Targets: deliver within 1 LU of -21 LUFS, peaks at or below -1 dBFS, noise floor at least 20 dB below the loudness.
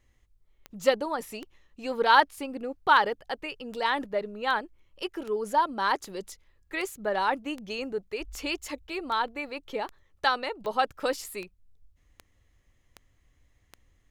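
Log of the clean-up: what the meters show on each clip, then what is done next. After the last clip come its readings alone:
clicks found 18; loudness -29.0 LUFS; peak level -7.0 dBFS; loudness target -21.0 LUFS
-> de-click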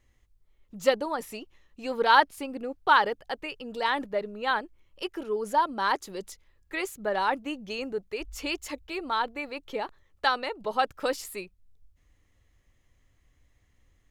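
clicks found 0; loudness -29.0 LUFS; peak level -7.0 dBFS; loudness target -21.0 LUFS
-> trim +8 dB; peak limiter -1 dBFS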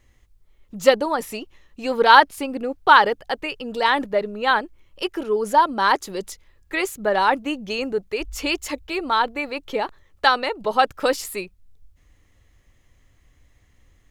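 loudness -21.0 LUFS; peak level -1.0 dBFS; noise floor -59 dBFS

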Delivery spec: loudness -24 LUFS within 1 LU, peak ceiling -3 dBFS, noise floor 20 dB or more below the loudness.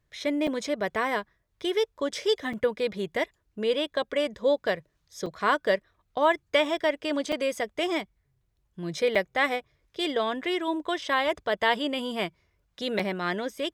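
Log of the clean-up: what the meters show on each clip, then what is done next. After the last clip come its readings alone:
dropouts 6; longest dropout 5.0 ms; loudness -28.0 LUFS; peak level -10.0 dBFS; loudness target -24.0 LUFS
-> interpolate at 0.47/2.53/5.26/7.32/9.15/12.99 s, 5 ms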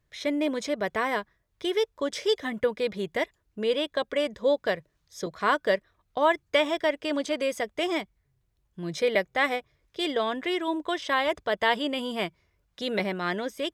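dropouts 0; loudness -28.0 LUFS; peak level -10.0 dBFS; loudness target -24.0 LUFS
-> trim +4 dB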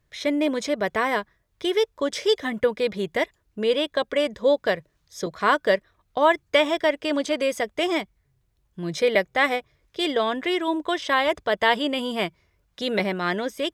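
loudness -24.0 LUFS; peak level -6.0 dBFS; noise floor -70 dBFS

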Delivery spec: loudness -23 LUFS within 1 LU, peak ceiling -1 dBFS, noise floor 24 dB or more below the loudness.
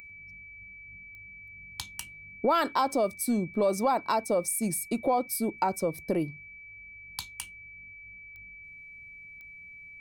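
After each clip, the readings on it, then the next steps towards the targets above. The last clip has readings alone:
clicks found 5; steady tone 2.3 kHz; tone level -45 dBFS; loudness -29.5 LUFS; peak level -14.5 dBFS; loudness target -23.0 LUFS
-> de-click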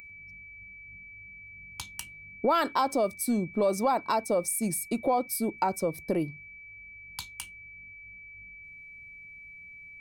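clicks found 0; steady tone 2.3 kHz; tone level -45 dBFS
-> band-stop 2.3 kHz, Q 30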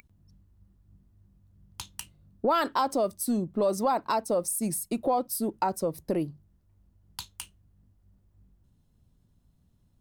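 steady tone not found; loudness -29.0 LUFS; peak level -14.5 dBFS; loudness target -23.0 LUFS
-> trim +6 dB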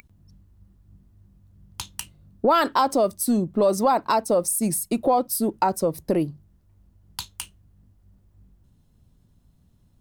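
loudness -23.0 LUFS; peak level -8.5 dBFS; noise floor -61 dBFS

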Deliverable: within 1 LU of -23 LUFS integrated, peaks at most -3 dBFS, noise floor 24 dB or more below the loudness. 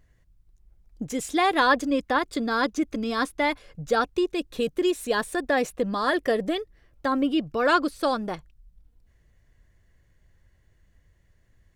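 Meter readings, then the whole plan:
loudness -25.5 LUFS; peak level -8.5 dBFS; loudness target -23.0 LUFS
-> trim +2.5 dB

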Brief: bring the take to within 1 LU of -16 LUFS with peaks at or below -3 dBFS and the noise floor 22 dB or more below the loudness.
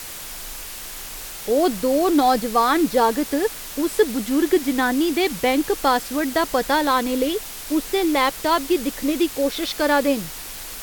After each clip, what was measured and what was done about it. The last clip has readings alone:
noise floor -35 dBFS; noise floor target -43 dBFS; loudness -20.5 LUFS; peak level -5.0 dBFS; loudness target -16.0 LUFS
-> noise reduction 8 dB, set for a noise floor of -35 dBFS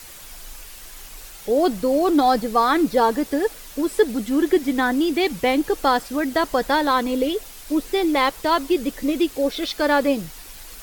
noise floor -41 dBFS; noise floor target -43 dBFS
-> noise reduction 6 dB, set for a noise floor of -41 dBFS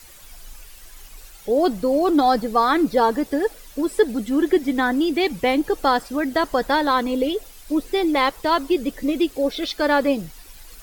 noise floor -45 dBFS; loudness -21.0 LUFS; peak level -5.5 dBFS; loudness target -16.0 LUFS
-> trim +5 dB; peak limiter -3 dBFS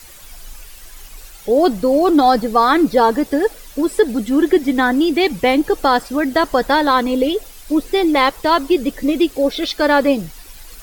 loudness -16.0 LUFS; peak level -3.0 dBFS; noise floor -40 dBFS

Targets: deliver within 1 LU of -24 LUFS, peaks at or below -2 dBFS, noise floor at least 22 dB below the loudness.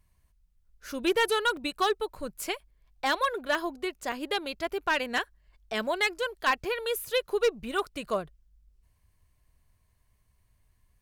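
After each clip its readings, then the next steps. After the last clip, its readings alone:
clipped samples 0.4%; clipping level -18.5 dBFS; dropouts 6; longest dropout 1.6 ms; loudness -29.5 LUFS; peak level -18.5 dBFS; loudness target -24.0 LUFS
-> clip repair -18.5 dBFS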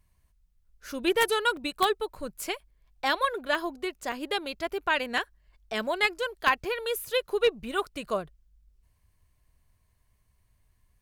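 clipped samples 0.0%; dropouts 6; longest dropout 1.6 ms
-> interpolate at 1.57/2.46/3.55/4.12/5.18/6.65 s, 1.6 ms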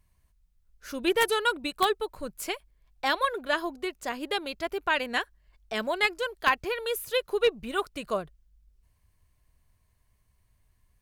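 dropouts 0; loudness -29.0 LUFS; peak level -9.5 dBFS; loudness target -24.0 LUFS
-> trim +5 dB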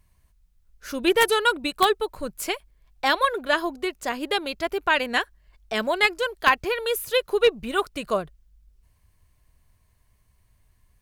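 loudness -24.0 LUFS; peak level -4.5 dBFS; noise floor -64 dBFS

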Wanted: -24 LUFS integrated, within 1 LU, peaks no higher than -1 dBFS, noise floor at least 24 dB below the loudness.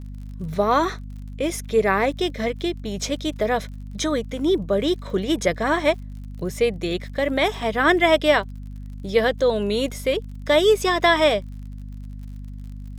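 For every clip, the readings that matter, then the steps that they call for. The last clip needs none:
tick rate 48 per s; hum 50 Hz; highest harmonic 250 Hz; hum level -32 dBFS; loudness -21.5 LUFS; peak level -4.5 dBFS; loudness target -24.0 LUFS
-> de-click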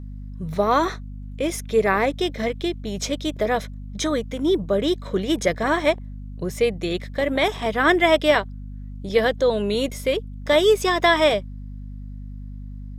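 tick rate 1.3 per s; hum 50 Hz; highest harmonic 250 Hz; hum level -32 dBFS
-> de-hum 50 Hz, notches 5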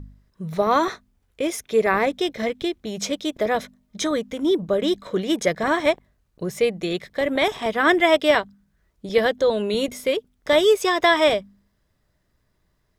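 hum not found; loudness -22.0 LUFS; peak level -5.0 dBFS; loudness target -24.0 LUFS
-> trim -2 dB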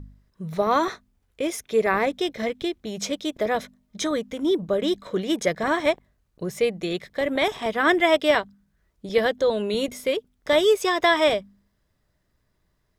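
loudness -24.0 LUFS; peak level -7.0 dBFS; noise floor -71 dBFS

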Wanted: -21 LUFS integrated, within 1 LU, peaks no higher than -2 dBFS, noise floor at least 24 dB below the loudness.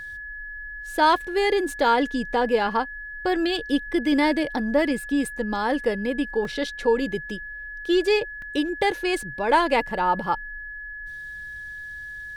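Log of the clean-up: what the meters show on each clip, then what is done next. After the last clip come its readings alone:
dropouts 2; longest dropout 2.3 ms; steady tone 1.7 kHz; tone level -34 dBFS; loudness -23.5 LUFS; peak level -7.0 dBFS; loudness target -21.0 LUFS
-> interpolate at 6.45/8.42 s, 2.3 ms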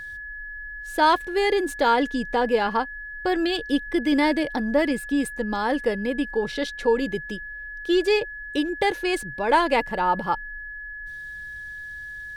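dropouts 0; steady tone 1.7 kHz; tone level -34 dBFS
-> band-stop 1.7 kHz, Q 30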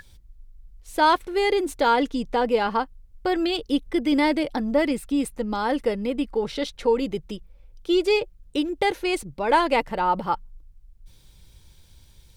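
steady tone not found; loudness -24.0 LUFS; peak level -7.5 dBFS; loudness target -21.0 LUFS
-> trim +3 dB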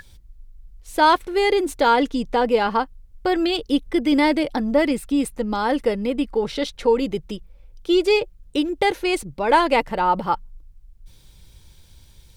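loudness -21.0 LUFS; peak level -4.5 dBFS; noise floor -50 dBFS

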